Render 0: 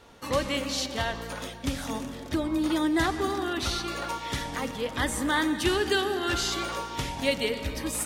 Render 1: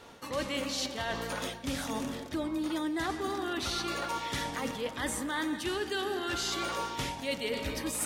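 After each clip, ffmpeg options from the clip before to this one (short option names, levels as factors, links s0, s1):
-af "lowshelf=f=75:g=-10.5,areverse,acompressor=threshold=0.0224:ratio=6,areverse,volume=1.33"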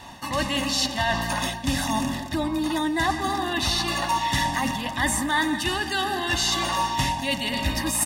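-af "aecho=1:1:1.1:0.91,volume=2.37"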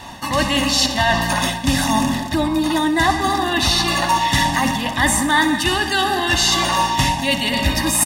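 -af "aecho=1:1:63|126|189|252:0.211|0.0972|0.0447|0.0206,volume=2.24"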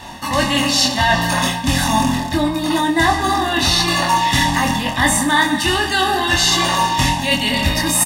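-filter_complex "[0:a]asplit=2[s0][s1];[s1]adelay=24,volume=0.668[s2];[s0][s2]amix=inputs=2:normalize=0"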